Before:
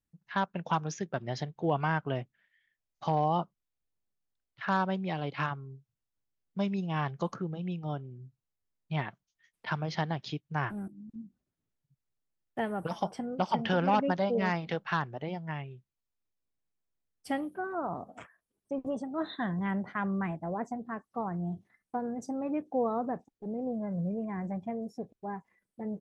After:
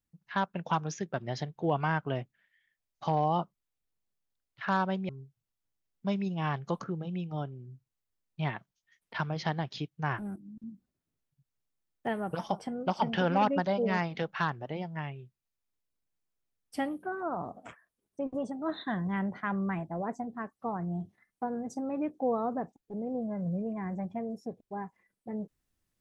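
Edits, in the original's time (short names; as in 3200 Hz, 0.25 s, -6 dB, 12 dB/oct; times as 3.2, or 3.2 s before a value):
5.09–5.61 cut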